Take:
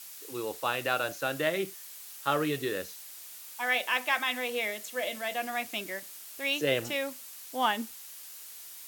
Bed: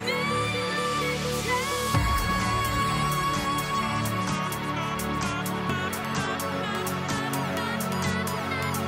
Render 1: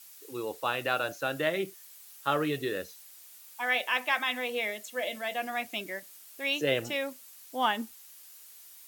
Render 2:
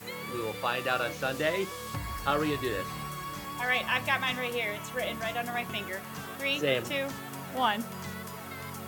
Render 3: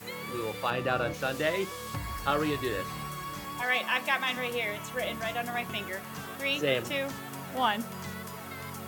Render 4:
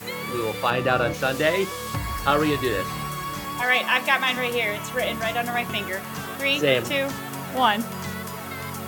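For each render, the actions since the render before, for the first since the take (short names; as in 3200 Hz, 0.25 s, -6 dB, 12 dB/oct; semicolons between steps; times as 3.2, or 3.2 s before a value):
denoiser 7 dB, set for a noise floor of -46 dBFS
add bed -12.5 dB
0.7–1.14 tilt -2.5 dB/oct; 3.62–4.37 HPF 200 Hz 24 dB/oct
gain +7.5 dB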